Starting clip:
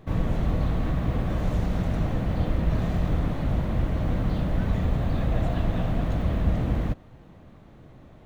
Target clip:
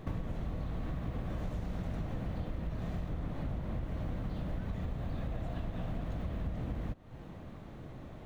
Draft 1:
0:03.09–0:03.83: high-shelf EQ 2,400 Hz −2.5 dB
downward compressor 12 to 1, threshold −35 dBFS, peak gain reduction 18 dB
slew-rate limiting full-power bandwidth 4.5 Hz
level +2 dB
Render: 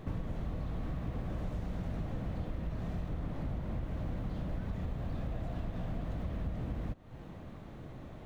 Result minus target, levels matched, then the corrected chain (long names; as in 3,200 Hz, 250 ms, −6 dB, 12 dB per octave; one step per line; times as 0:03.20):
slew-rate limiting: distortion +19 dB
0:03.09–0:03.83: high-shelf EQ 2,400 Hz −2.5 dB
downward compressor 12 to 1, threshold −35 dBFS, peak gain reduction 18 dB
slew-rate limiting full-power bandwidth 10 Hz
level +2 dB